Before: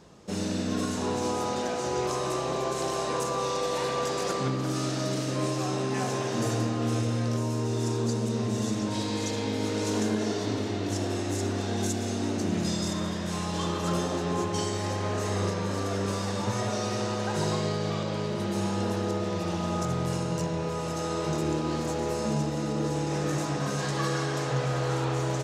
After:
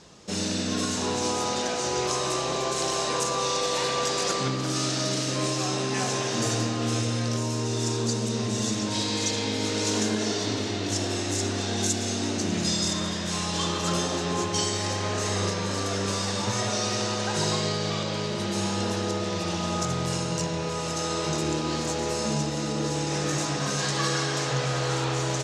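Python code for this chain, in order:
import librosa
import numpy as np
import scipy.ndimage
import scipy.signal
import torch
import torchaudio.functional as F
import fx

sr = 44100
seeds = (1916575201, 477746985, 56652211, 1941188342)

y = scipy.signal.sosfilt(scipy.signal.butter(2, 7600.0, 'lowpass', fs=sr, output='sos'), x)
y = fx.high_shelf(y, sr, hz=2300.0, db=11.5)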